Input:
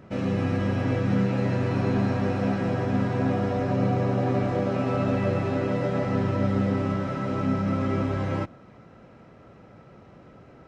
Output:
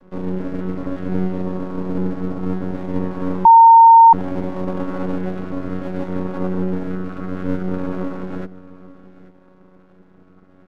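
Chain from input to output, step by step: vocoder on a held chord bare fifth, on F#3; 1.42–2.75 s: peaking EQ 2.3 kHz -14 dB 0.57 oct; half-wave rectifier; delay 837 ms -18.5 dB; 3.45–4.13 s: bleep 915 Hz -9.5 dBFS; trim +6 dB

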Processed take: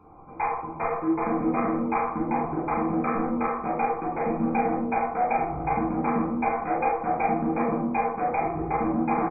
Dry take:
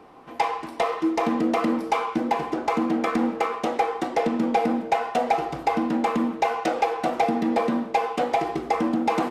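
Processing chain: local Wiener filter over 25 samples; peaking EQ 300 Hz -9.5 dB 1.9 oct; in parallel at -1 dB: peak limiter -24 dBFS, peak gain reduction 11.5 dB; on the sum: brick-wall FIR low-pass 2.5 kHz; delay 445 ms -18 dB; reverberation RT60 0.55 s, pre-delay 10 ms, DRR -3.5 dB; trim -7 dB

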